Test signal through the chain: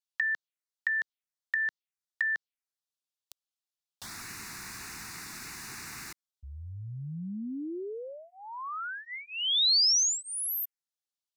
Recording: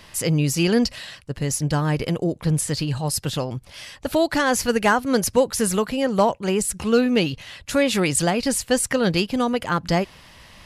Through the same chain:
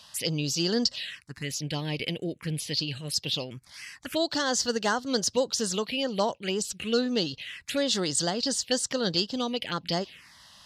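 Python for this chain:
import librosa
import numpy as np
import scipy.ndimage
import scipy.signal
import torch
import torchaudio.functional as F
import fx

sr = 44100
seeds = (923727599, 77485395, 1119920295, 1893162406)

y = fx.weighting(x, sr, curve='D')
y = fx.env_phaser(y, sr, low_hz=330.0, high_hz=2400.0, full_db=-15.5)
y = F.gain(torch.from_numpy(y), -7.0).numpy()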